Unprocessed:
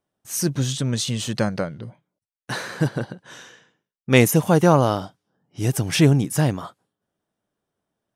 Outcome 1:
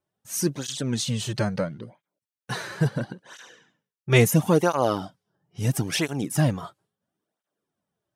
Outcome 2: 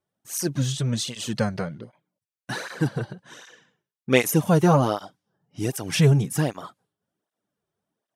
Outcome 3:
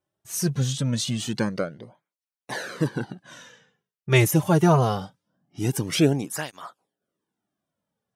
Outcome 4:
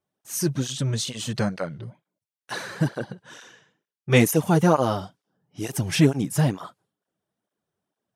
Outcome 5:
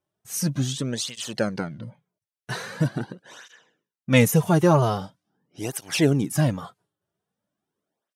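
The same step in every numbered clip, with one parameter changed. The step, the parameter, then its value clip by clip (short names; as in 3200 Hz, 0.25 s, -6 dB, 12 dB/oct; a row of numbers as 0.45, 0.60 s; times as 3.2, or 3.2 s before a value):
tape flanging out of phase, nulls at: 0.74, 1.3, 0.23, 2.2, 0.43 Hz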